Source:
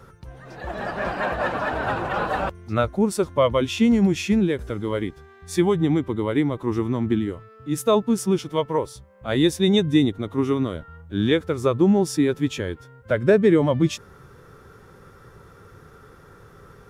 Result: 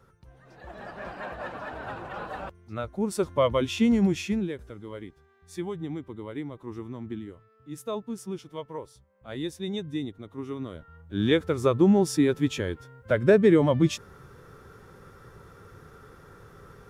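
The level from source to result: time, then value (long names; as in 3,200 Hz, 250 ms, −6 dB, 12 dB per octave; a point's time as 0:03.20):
0:02.81 −12 dB
0:03.21 −4 dB
0:04.09 −4 dB
0:04.74 −14 dB
0:10.44 −14 dB
0:11.36 −2 dB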